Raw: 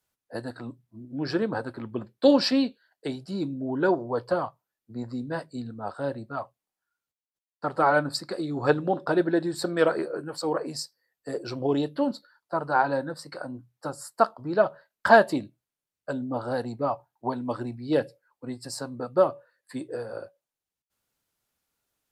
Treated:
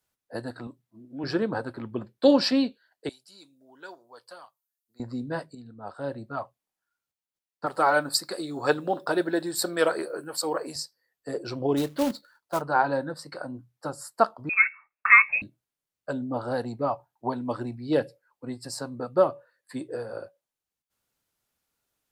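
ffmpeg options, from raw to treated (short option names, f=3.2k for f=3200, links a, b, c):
-filter_complex "[0:a]asettb=1/sr,asplit=3[a][b][c];[a]atrim=end=0.674[d];[b]atrim=start=0.67:end=1.24,asetpts=PTS-STARTPTS,afade=t=in:d=0.004:c=qsin,afade=t=out:st=0.566:d=0.004:c=qsin,highpass=f=370:p=1[e];[c]atrim=start=1.236[f];[d][e]acrossfade=d=0.004:c1=hsin:c2=qsin[g];[g][f]acrossfade=d=0.004:c1=qsin:c2=hsin,asettb=1/sr,asplit=3[h][i][j];[h]atrim=end=3.094[k];[i]atrim=start=3.09:end=5,asetpts=PTS-STARTPTS,afade=t=in:d=0.004:c=qsin,afade=t=out:st=1.906:d=0.004:c=qsin,aderivative[l];[j]atrim=start=4.996[m];[k][l]acrossfade=d=0.004:c1=hsin:c2=qsin[n];[n][m]acrossfade=d=0.004:c1=qsin:c2=hsin,asettb=1/sr,asplit=3[o][p][q];[o]atrim=end=7.664[r];[p]atrim=start=7.66:end=10.76,asetpts=PTS-STARTPTS,afade=t=in:d=0.004:c=qsin,afade=t=out:st=3.096:d=0.004:c=qsin,aemphasis=mode=production:type=bsi[s];[q]atrim=start=10.756[t];[r][s]acrossfade=d=0.004:c1=hsin:c2=qsin[u];[u][t]acrossfade=d=0.004:c1=qsin:c2=hsin,asplit=3[v][w][x];[v]afade=t=out:st=11.76:d=0.02[y];[w]acrusher=bits=3:mode=log:mix=0:aa=0.000001,afade=t=in:st=11.76:d=0.02,afade=t=out:st=12.6:d=0.02[z];[x]afade=t=in:st=12.6:d=0.02[aa];[y][z][aa]amix=inputs=3:normalize=0,asettb=1/sr,asplit=3[ab][ac][ad];[ab]atrim=end=14.494[ae];[ac]atrim=start=14.49:end=15.42,asetpts=PTS-STARTPTS,afade=t=in:d=0.004:c=qsin,afade=t=out:st=0.926:d=0.004:c=qsin,lowpass=f=2.4k:t=q:w=0.5098,lowpass=f=2.4k:t=q:w=0.6013,lowpass=f=2.4k:t=q:w=0.9,lowpass=f=2.4k:t=q:w=2.563,afreqshift=-2800[af];[ad]atrim=start=15.416[ag];[ae][af]acrossfade=d=0.004:c1=hsin:c2=qsin[ah];[ah][ag]acrossfade=d=0.004:c1=qsin:c2=hsin,asplit=2[ai][aj];[ai]atrim=end=5.55,asetpts=PTS-STARTPTS,afade=t=out:st=5.546:d=0.004:c=hsin:silence=0.237137[ak];[aj]atrim=start=5.55,asetpts=PTS-STARTPTS,afade=t=in:d=0.78:silence=0.237137[al];[ak][al]concat=n=2:v=0:a=1"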